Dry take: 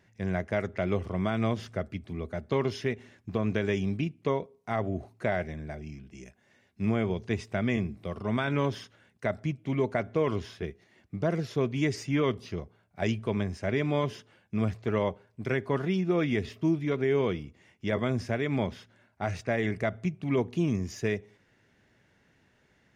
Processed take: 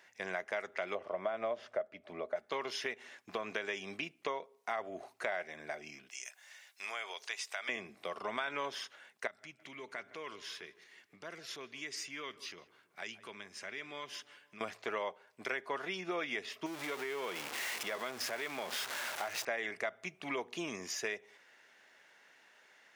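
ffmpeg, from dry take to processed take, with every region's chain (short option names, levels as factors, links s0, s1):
-filter_complex "[0:a]asettb=1/sr,asplit=3[s0][s1][s2];[s0]atrim=end=0.954[s3];[s1]atrim=start=0.95:end=2.36,asetpts=PTS-STARTPTS,afade=t=in:d=0.004:c=qsin,afade=t=out:st=1.406:d=0.004:c=qsin,lowpass=f=1400:p=1,equalizer=f=600:w=4.8:g=14[s4];[s2]atrim=start=2.356[s5];[s3][s4]acrossfade=d=0.004:c1=hsin:c2=qsin[s6];[s6][s5]acrossfade=d=0.004:c1=qsin:c2=hsin,asettb=1/sr,asplit=3[s7][s8][s9];[s7]atrim=end=6.094[s10];[s8]atrim=start=6.09:end=7.69,asetpts=PTS-STARTPTS,afade=t=in:d=0.004:c=qsin,afade=t=out:st=1.596:d=0.004:c=qsin,highpass=750,highshelf=f=3200:g=11.5,acompressor=threshold=0.00282:ratio=1.5:attack=3.2:release=140:knee=1:detection=peak[s11];[s9]atrim=start=7.686[s12];[s10][s11]acrossfade=d=0.004:c1=hsin:c2=qsin[s13];[s13][s12]acrossfade=d=0.004:c1=qsin:c2=hsin,asettb=1/sr,asplit=3[s14][s15][s16];[s14]atrim=end=9.274[s17];[s15]atrim=start=9.27:end=14.61,asetpts=PTS-STARTPTS,afade=t=in:d=0.004:c=qsin,afade=t=out:st=5.336:d=0.004:c=qsin,equalizer=f=680:w=1:g=-10,acompressor=threshold=0.00447:ratio=2:attack=3.2:release=140:knee=1:detection=peak,asplit=2[s18][s19];[s19]adelay=162,lowpass=f=2000:p=1,volume=0.126,asplit=2[s20][s21];[s21]adelay=162,lowpass=f=2000:p=1,volume=0.52,asplit=2[s22][s23];[s23]adelay=162,lowpass=f=2000:p=1,volume=0.52,asplit=2[s24][s25];[s25]adelay=162,lowpass=f=2000:p=1,volume=0.52[s26];[s18][s20][s22][s24][s26]amix=inputs=5:normalize=0,atrim=end_sample=235494[s27];[s16]atrim=start=14.606[s28];[s17][s27]acrossfade=d=0.004:c1=hsin:c2=qsin[s29];[s29][s28]acrossfade=d=0.004:c1=qsin:c2=hsin,asettb=1/sr,asplit=3[s30][s31][s32];[s30]atrim=end=16.664[s33];[s31]atrim=start=16.66:end=19.45,asetpts=PTS-STARTPTS,afade=t=in:d=0.004:c=qsin,afade=t=out:st=2.786:d=0.004:c=qsin,aeval=exprs='val(0)+0.5*0.02*sgn(val(0))':c=same,acompressor=threshold=0.0316:ratio=3:attack=3.2:release=140:knee=1:detection=peak[s34];[s32]atrim=start=19.446[s35];[s33][s34]acrossfade=d=0.004:c1=hsin:c2=qsin[s36];[s36][s35]acrossfade=d=0.004:c1=qsin:c2=hsin,highpass=740,acompressor=threshold=0.00708:ratio=3,volume=2.11"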